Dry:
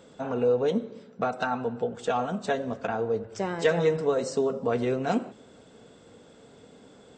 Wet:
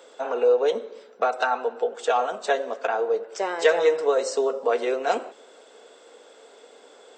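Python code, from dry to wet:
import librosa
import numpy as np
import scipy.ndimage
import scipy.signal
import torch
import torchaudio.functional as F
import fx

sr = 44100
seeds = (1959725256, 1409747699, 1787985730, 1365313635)

y = scipy.signal.sosfilt(scipy.signal.butter(4, 410.0, 'highpass', fs=sr, output='sos'), x)
y = y * 10.0 ** (5.5 / 20.0)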